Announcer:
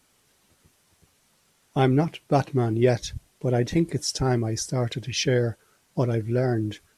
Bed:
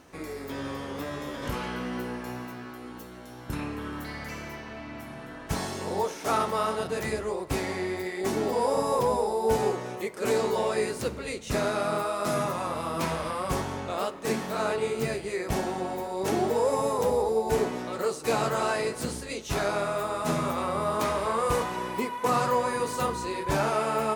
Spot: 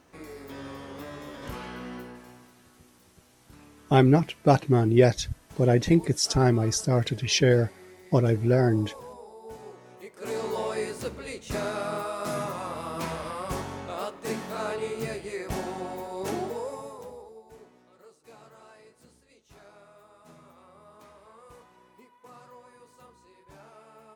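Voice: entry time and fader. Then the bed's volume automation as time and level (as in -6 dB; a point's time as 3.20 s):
2.15 s, +2.0 dB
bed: 1.93 s -5.5 dB
2.57 s -19 dB
9.64 s -19 dB
10.53 s -3.5 dB
16.29 s -3.5 dB
17.53 s -25.5 dB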